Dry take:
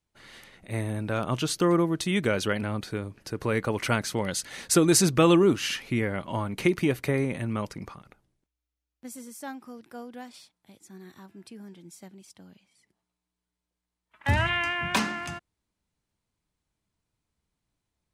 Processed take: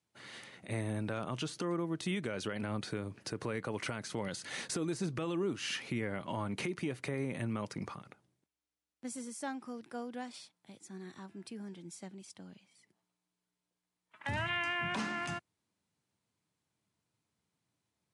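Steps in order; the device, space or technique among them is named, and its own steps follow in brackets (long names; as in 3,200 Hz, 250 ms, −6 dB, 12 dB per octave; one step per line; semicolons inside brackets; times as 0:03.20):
podcast mastering chain (high-pass filter 100 Hz 24 dB per octave; de-essing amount 70%; downward compressor 4 to 1, threshold −32 dBFS, peak gain reduction 15 dB; brickwall limiter −25.5 dBFS, peak gain reduction 6.5 dB; MP3 96 kbit/s 24,000 Hz)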